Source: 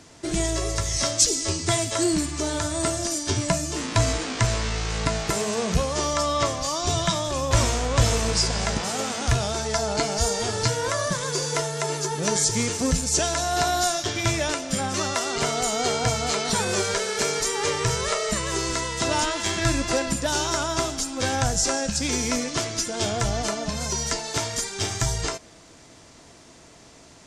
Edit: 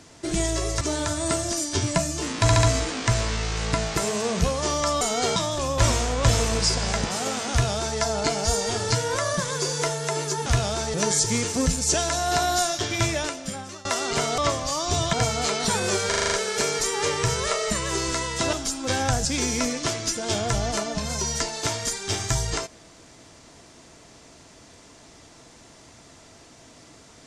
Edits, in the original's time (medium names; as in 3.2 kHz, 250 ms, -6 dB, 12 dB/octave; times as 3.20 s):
0.81–2.35 s: delete
3.96 s: stutter 0.07 s, 4 plays
6.34–7.09 s: swap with 15.63–15.98 s
9.24–9.72 s: copy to 12.19 s
14.29–15.10 s: fade out linear, to -21.5 dB
16.93 s: stutter 0.04 s, 7 plays
19.14–20.86 s: delete
21.58–21.96 s: delete